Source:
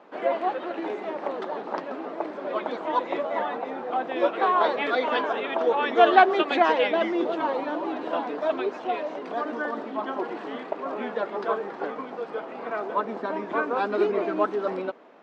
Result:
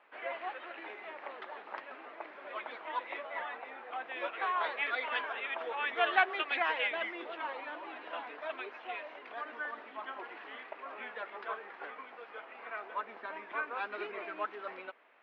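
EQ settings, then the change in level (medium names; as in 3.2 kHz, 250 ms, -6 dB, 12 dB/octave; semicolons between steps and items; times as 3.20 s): band-pass filter 2.3 kHz, Q 1.7; distance through air 150 m; 0.0 dB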